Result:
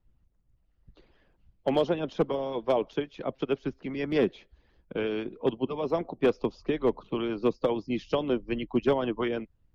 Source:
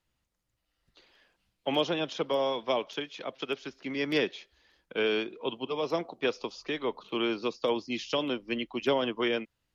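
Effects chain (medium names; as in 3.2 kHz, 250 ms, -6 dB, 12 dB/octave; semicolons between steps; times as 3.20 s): harmonic-percussive split harmonic -11 dB; tilt EQ -4.5 dB/octave; overload inside the chain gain 17.5 dB; trim +2 dB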